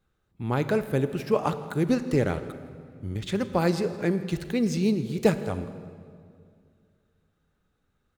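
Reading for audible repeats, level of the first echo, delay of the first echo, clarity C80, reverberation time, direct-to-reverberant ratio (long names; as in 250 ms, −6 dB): 1, −22.0 dB, 165 ms, 12.5 dB, 2.2 s, 11.0 dB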